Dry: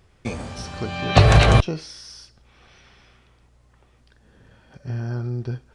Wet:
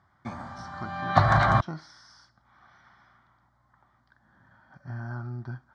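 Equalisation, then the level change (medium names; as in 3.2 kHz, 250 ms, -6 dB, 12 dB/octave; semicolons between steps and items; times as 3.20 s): band-pass 110–2300 Hz; bass shelf 480 Hz -9.5 dB; static phaser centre 1.1 kHz, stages 4; +3.5 dB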